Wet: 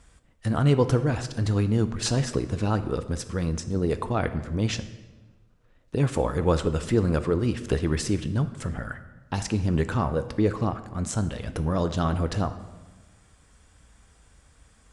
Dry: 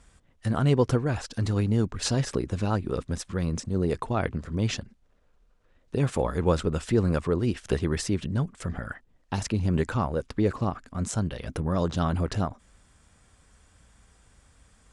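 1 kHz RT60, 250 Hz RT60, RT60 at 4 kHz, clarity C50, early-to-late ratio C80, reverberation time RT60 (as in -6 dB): 1.2 s, 1.4 s, 0.95 s, 12.5 dB, 14.5 dB, 1.2 s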